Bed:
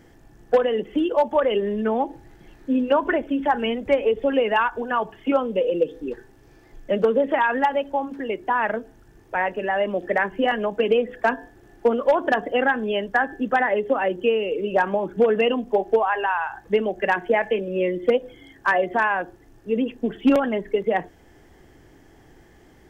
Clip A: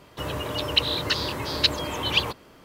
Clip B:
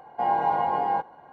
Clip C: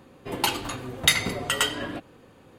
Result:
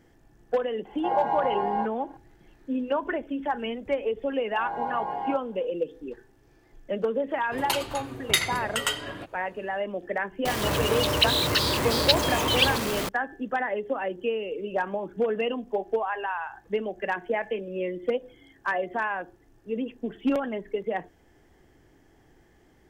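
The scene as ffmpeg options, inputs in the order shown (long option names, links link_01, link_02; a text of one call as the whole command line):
ffmpeg -i bed.wav -i cue0.wav -i cue1.wav -i cue2.wav -filter_complex "[2:a]asplit=2[link_01][link_02];[0:a]volume=-7.5dB[link_03];[link_02]dynaudnorm=framelen=210:gausssize=3:maxgain=11.5dB[link_04];[3:a]equalizer=frequency=250:width_type=o:width=0.77:gain=-6[link_05];[1:a]aeval=exprs='val(0)+0.5*0.075*sgn(val(0))':channel_layout=same[link_06];[link_01]atrim=end=1.32,asetpts=PTS-STARTPTS,volume=-3dB,afade=type=in:duration=0.004:curve=hsin,afade=type=out:start_time=1.316:duration=0.004:curve=hsin,adelay=850[link_07];[link_04]atrim=end=1.32,asetpts=PTS-STARTPTS,volume=-16.5dB,afade=type=in:duration=0.004:curve=hsin,afade=type=out:start_time=1.316:duration=0.004:curve=hsin,adelay=4350[link_08];[link_05]atrim=end=2.58,asetpts=PTS-STARTPTS,volume=-3dB,afade=type=in:duration=0.1,afade=type=out:start_time=2.48:duration=0.1,adelay=7260[link_09];[link_06]atrim=end=2.64,asetpts=PTS-STARTPTS,volume=-2dB,afade=type=in:duration=0.004:curve=hsin,afade=type=out:start_time=2.636:duration=0.004:curve=hsin,adelay=10450[link_10];[link_03][link_07][link_08][link_09][link_10]amix=inputs=5:normalize=0" out.wav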